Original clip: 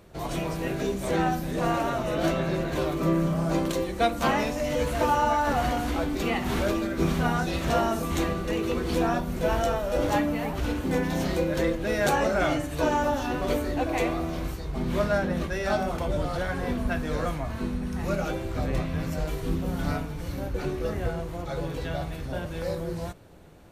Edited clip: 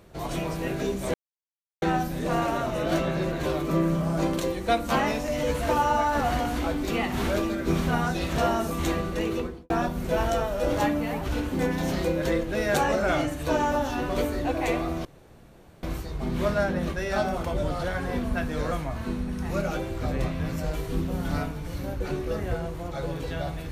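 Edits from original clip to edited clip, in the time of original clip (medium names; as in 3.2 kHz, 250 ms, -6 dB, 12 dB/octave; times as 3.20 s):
1.14 s: insert silence 0.68 s
8.61–9.02 s: studio fade out
14.37 s: insert room tone 0.78 s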